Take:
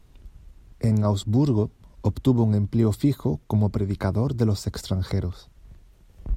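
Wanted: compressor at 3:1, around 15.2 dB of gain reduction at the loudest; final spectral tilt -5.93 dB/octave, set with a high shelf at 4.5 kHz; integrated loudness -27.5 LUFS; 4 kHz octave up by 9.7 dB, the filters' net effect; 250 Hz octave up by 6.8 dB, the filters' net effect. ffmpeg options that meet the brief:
-af "equalizer=f=250:t=o:g=8,equalizer=f=4000:t=o:g=7,highshelf=f=4500:g=8.5,acompressor=threshold=0.0282:ratio=3,volume=1.68"

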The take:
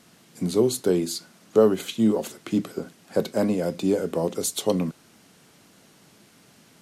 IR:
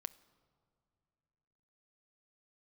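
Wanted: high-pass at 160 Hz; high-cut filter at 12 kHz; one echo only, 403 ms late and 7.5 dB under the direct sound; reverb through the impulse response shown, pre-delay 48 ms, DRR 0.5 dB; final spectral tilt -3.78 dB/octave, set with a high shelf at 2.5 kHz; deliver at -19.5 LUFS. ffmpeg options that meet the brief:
-filter_complex "[0:a]highpass=160,lowpass=12000,highshelf=f=2500:g=-8.5,aecho=1:1:403:0.422,asplit=2[s0][s1];[1:a]atrim=start_sample=2205,adelay=48[s2];[s1][s2]afir=irnorm=-1:irlink=0,volume=1.41[s3];[s0][s3]amix=inputs=2:normalize=0,volume=1.41"

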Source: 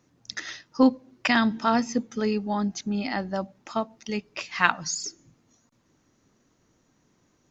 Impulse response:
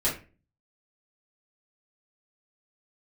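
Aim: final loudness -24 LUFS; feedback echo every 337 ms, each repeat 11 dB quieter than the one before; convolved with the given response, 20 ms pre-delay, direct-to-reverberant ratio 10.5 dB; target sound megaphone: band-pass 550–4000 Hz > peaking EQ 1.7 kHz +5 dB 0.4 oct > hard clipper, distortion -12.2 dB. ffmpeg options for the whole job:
-filter_complex "[0:a]aecho=1:1:337|674|1011:0.282|0.0789|0.0221,asplit=2[s0][s1];[1:a]atrim=start_sample=2205,adelay=20[s2];[s1][s2]afir=irnorm=-1:irlink=0,volume=0.0944[s3];[s0][s3]amix=inputs=2:normalize=0,highpass=550,lowpass=4000,equalizer=f=1700:t=o:w=0.4:g=5,asoftclip=type=hard:threshold=0.224,volume=1.78"

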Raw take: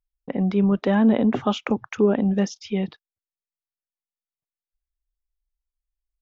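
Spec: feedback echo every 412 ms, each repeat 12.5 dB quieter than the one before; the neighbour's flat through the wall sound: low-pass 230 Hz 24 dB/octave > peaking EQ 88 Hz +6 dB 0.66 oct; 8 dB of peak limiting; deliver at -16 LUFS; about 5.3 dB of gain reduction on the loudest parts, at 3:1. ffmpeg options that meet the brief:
-af "acompressor=threshold=0.1:ratio=3,alimiter=limit=0.141:level=0:latency=1,lowpass=f=230:w=0.5412,lowpass=f=230:w=1.3066,equalizer=f=88:t=o:w=0.66:g=6,aecho=1:1:412|824|1236:0.237|0.0569|0.0137,volume=4.47"

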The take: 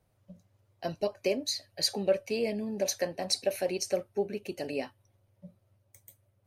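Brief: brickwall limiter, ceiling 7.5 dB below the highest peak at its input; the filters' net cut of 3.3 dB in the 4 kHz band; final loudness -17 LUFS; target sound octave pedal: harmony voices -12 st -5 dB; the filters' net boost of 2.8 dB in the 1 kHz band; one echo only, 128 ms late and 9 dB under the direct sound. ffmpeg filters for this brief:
-filter_complex "[0:a]equalizer=f=1000:t=o:g=4.5,equalizer=f=4000:t=o:g=-4,alimiter=limit=0.0891:level=0:latency=1,aecho=1:1:128:0.355,asplit=2[s0][s1];[s1]asetrate=22050,aresample=44100,atempo=2,volume=0.562[s2];[s0][s2]amix=inputs=2:normalize=0,volume=5.96"

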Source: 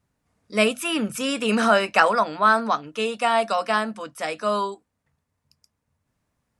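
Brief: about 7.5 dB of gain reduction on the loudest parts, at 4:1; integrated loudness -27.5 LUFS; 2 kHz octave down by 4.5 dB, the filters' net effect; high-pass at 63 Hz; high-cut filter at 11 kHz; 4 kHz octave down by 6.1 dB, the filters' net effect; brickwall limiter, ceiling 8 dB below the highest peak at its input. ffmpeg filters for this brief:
-af "highpass=63,lowpass=11000,equalizer=f=2000:t=o:g=-5,equalizer=f=4000:t=o:g=-6.5,acompressor=threshold=0.0708:ratio=4,volume=1.33,alimiter=limit=0.158:level=0:latency=1"

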